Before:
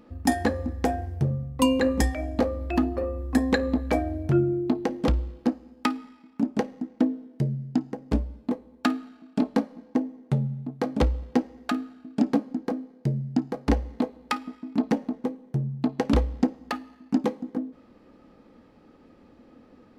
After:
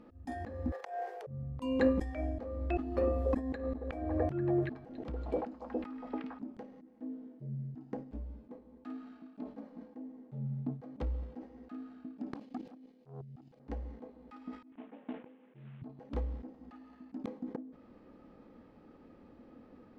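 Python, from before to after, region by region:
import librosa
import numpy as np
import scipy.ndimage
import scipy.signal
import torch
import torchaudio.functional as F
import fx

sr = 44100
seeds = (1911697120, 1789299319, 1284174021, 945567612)

y = fx.chain(x, sr, fx.steep_highpass(hz=400.0, slope=96),
    fx.transient(attack_db=-7, sustain_db=11), at=(0.72, 1.27))
y = fx.chain(y, sr, fx.echo_stepped(ms=282, hz=490.0, octaves=0.7, feedback_pct=70, wet_db=-7.0),
    fx.band_squash(depth_pct=70), at=(2.79, 6.42))
y = fx.chain(y, sr, fx.high_shelf_res(hz=2000.0, db=12.0, q=1.5),
    fx.level_steps(step_db=15),
    fx.transformer_sat(knee_hz=880.0), at=(12.35, 13.6))
y = fx.chain(y, sr, fx.cvsd(bps=16000),
    fx.highpass(hz=430.0, slope=6), at=(14.72, 15.82))
y = fx.lowpass(y, sr, hz=2200.0, slope=6)
y = fx.auto_swell(y, sr, attack_ms=274.0)
y = fx.sustainer(y, sr, db_per_s=140.0)
y = F.gain(torch.from_numpy(y), -3.0).numpy()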